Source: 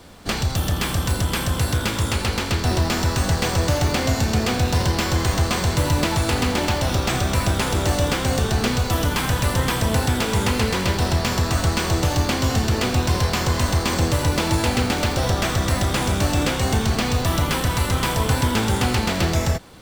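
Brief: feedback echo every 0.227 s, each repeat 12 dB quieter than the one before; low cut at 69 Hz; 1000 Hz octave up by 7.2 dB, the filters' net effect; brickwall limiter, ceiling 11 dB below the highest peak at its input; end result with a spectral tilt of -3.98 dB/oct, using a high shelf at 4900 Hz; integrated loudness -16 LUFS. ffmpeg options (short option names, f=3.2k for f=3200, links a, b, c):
-af "highpass=69,equalizer=f=1k:t=o:g=8.5,highshelf=f=4.9k:g=8,alimiter=limit=-14.5dB:level=0:latency=1,aecho=1:1:227|454|681:0.251|0.0628|0.0157,volume=7dB"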